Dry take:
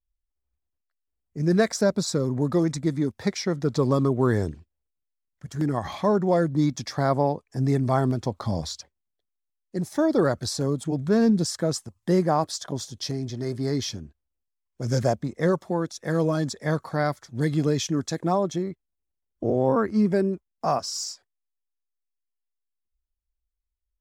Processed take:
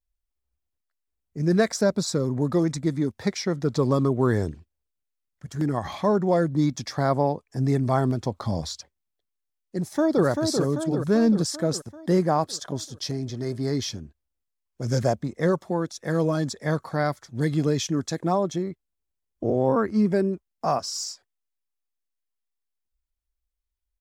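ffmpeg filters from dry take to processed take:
-filter_complex "[0:a]asplit=2[a][b];[b]afade=t=in:st=9.78:d=0.01,afade=t=out:st=10.25:d=0.01,aecho=0:1:390|780|1170|1560|1950|2340|2730|3120|3510:0.595662|0.357397|0.214438|0.128663|0.0771978|0.0463187|0.0277912|0.0166747|0.0100048[c];[a][c]amix=inputs=2:normalize=0"

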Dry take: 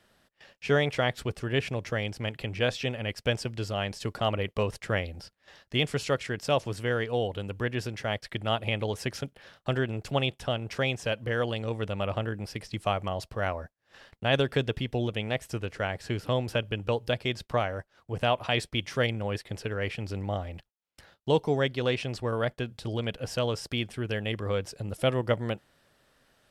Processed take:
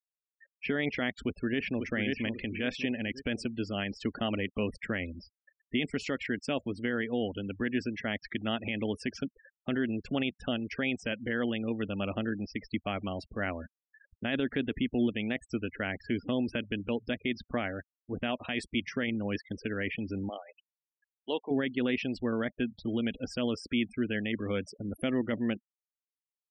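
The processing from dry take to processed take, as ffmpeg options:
-filter_complex "[0:a]asplit=2[a][b];[b]afade=t=in:st=1.22:d=0.01,afade=t=out:st=1.88:d=0.01,aecho=0:1:540|1080|1620|2160|2700:0.473151|0.212918|0.0958131|0.0431159|0.0194022[c];[a][c]amix=inputs=2:normalize=0,asplit=3[d][e][f];[d]afade=t=out:st=20.28:d=0.02[g];[e]highpass=570,lowpass=5.6k,afade=t=in:st=20.28:d=0.02,afade=t=out:st=21.5:d=0.02[h];[f]afade=t=in:st=21.5:d=0.02[i];[g][h][i]amix=inputs=3:normalize=0,afftfilt=real='re*gte(hypot(re,im),0.0126)':imag='im*gte(hypot(re,im),0.0126)':win_size=1024:overlap=0.75,equalizer=f=125:t=o:w=1:g=-12,equalizer=f=250:t=o:w=1:g=12,equalizer=f=500:t=o:w=1:g=-5,equalizer=f=1k:t=o:w=1:g=-9,equalizer=f=2k:t=o:w=1:g=6,equalizer=f=4k:t=o:w=1:g=-5,equalizer=f=8k:t=o:w=1:g=-3,alimiter=limit=-20dB:level=0:latency=1:release=30"

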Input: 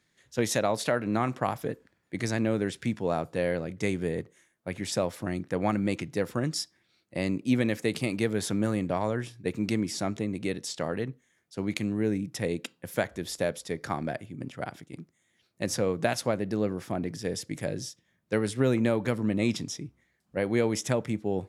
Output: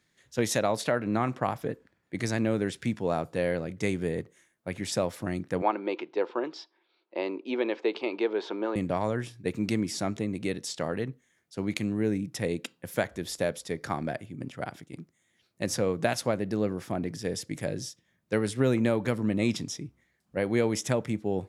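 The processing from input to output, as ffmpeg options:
-filter_complex "[0:a]asettb=1/sr,asplit=3[a][b][c];[a]atrim=end=0.814[d];[b]atrim=start=0.81:end=2.15,asetpts=PTS-STARTPTS,afade=t=in:d=0.004:c=qsin,afade=t=out:st=1.336:d=0.004:c=qsin,highshelf=f=4.9k:g=-6[e];[c]atrim=start=2.146[f];[d][e]acrossfade=d=0.004:c1=hsin:c2=qsin[g];[g][f]acrossfade=d=0.004:c1=qsin:c2=hsin,asettb=1/sr,asplit=3[h][i][j];[h]atrim=end=5.624[k];[i]atrim=start=5.62:end=8.76,asetpts=PTS-STARTPTS,afade=t=in:d=0.004:c=qsin,afade=t=out:st=3.136:d=0.004:c=qsin,highpass=f=340:w=0.5412,highpass=f=340:w=1.3066,equalizer=f=370:t=q:w=4:g=7,equalizer=f=930:t=q:w=4:g=10,equalizer=f=1.9k:t=q:w=4:g=-7,lowpass=f=3.8k:w=0.5412,lowpass=f=3.8k:w=1.3066[l];[j]atrim=start=8.756[m];[k][l]acrossfade=d=0.004:c1=hsin:c2=qsin[n];[n][m]acrossfade=d=0.004:c1=qsin:c2=hsin"

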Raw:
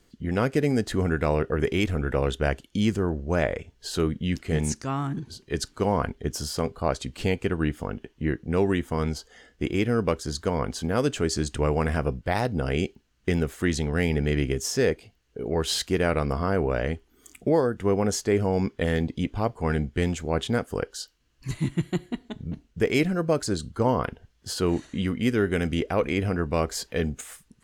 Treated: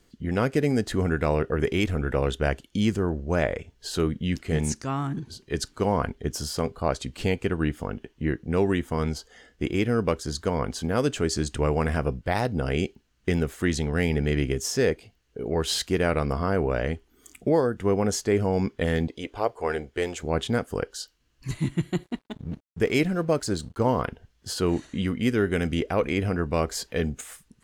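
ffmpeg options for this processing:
-filter_complex "[0:a]asettb=1/sr,asplit=3[a][b][c];[a]atrim=end=19.084[d];[b]atrim=start=19.08:end=20.23,asetpts=PTS-STARTPTS,afade=t=in:d=0.004:c=qsin,afade=t=out:st=1.146:d=0.004:c=qsin,lowshelf=f=290:t=q:w=1.5:g=-11.5[e];[c]atrim=start=20.226[f];[d][e]acrossfade=d=0.004:c1=hsin:c2=qsin[g];[g][f]acrossfade=d=0.004:c1=qsin:c2=hsin,asettb=1/sr,asplit=3[h][i][j];[h]atrim=end=22.034[k];[i]atrim=start=22.03:end=24.02,asetpts=PTS-STARTPTS,afade=t=in:d=0.004:c=qsin,afade=t=out:st=1.986:d=0.004:c=qsin,aeval=exprs='sgn(val(0))*max(abs(val(0))-0.00266,0)':c=same[l];[j]atrim=start=24.016[m];[k][l]acrossfade=d=0.004:c1=hsin:c2=qsin[n];[n][m]acrossfade=d=0.004:c1=qsin:c2=hsin"

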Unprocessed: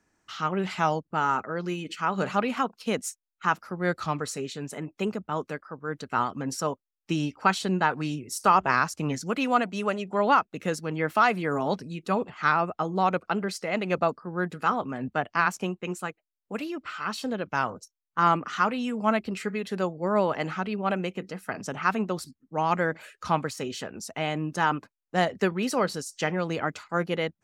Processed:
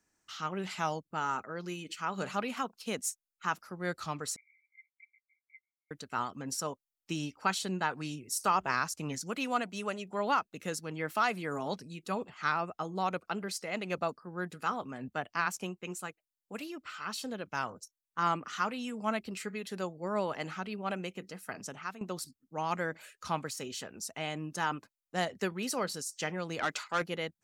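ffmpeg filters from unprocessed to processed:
-filter_complex "[0:a]asettb=1/sr,asplit=3[a][b][c];[a]atrim=end=4.364[d];[b]atrim=start=4.36:end=5.91,asetpts=PTS-STARTPTS,afade=t=in:d=0.004:c=qsin,afade=t=out:st=1.546:d=0.004:c=qsin,asuperpass=centerf=2200:order=20:qfactor=7.3[e];[c]atrim=start=5.906[f];[d][e]acrossfade=d=0.004:c1=hsin:c2=qsin[g];[g][f]acrossfade=d=0.004:c1=qsin:c2=hsin,asettb=1/sr,asplit=3[h][i][j];[h]atrim=end=26.594[k];[i]atrim=start=26.59:end=27.02,asetpts=PTS-STARTPTS,afade=t=in:d=0.004:c=qsin,afade=t=out:st=0.426:d=0.004:c=qsin,asplit=2[l][m];[m]highpass=f=720:p=1,volume=16dB,asoftclip=type=tanh:threshold=-12.5dB[n];[l][n]amix=inputs=2:normalize=0,lowpass=f=4.9k:p=1,volume=-6dB[o];[j]atrim=start=27.016[p];[k][o]acrossfade=d=0.004:c1=hsin:c2=qsin[q];[q][p]acrossfade=d=0.004:c1=qsin:c2=hsin,asplit=2[r][s];[r]atrim=end=22.01,asetpts=PTS-STARTPTS,afade=t=out:st=21.58:d=0.43:silence=0.188365[t];[s]atrim=start=22.01,asetpts=PTS-STARTPTS,afade=t=in:d=0.004:c=hsin:silence=0.188365[u];[t][u]concat=n=2:v=0:a=1,highshelf=f=3.9k:g=11,volume=-9dB"

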